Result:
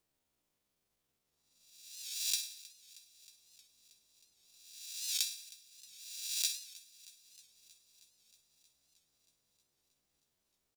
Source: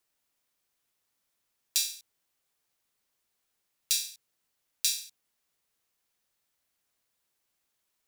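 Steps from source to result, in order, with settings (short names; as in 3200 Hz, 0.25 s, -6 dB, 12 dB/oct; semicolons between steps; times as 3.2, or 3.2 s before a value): spectral swells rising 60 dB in 0.78 s; EQ curve 160 Hz 0 dB, 490 Hz -4 dB, 1600 Hz -12 dB, 3500 Hz -10 dB, 15000 Hz -13 dB; in parallel at -2.5 dB: compressor, threshold -54 dBFS, peak gain reduction 20.5 dB; on the sum: transient shaper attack +6 dB, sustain -2 dB; tempo 0.75×; on a send: thinning echo 0.315 s, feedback 74%, level -21 dB; on the sum: record warp 78 rpm, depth 100 cents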